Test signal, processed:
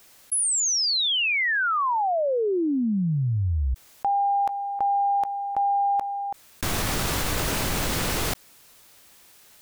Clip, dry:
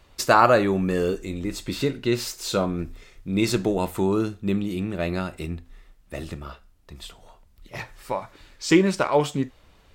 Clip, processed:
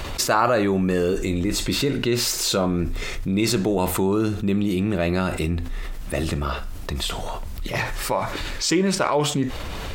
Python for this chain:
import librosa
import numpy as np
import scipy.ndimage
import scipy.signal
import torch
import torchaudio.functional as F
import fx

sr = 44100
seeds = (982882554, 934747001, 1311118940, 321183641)

y = fx.env_flatten(x, sr, amount_pct=70)
y = y * librosa.db_to_amplitude(-5.0)